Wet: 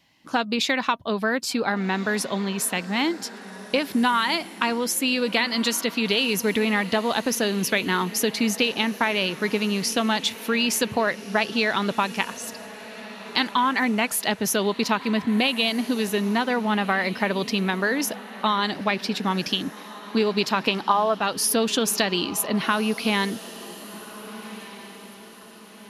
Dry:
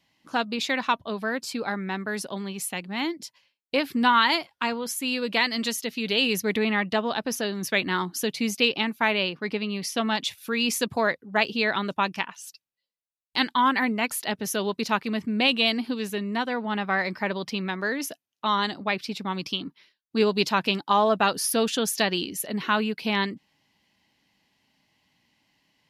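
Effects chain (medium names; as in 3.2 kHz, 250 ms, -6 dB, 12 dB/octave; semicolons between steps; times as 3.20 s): 20.63–21.15 s: peaking EQ 1 kHz +9 dB 2.5 oct; compression, threshold -25 dBFS, peak gain reduction 16 dB; echo that smears into a reverb 1568 ms, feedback 42%, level -15.5 dB; trim +6.5 dB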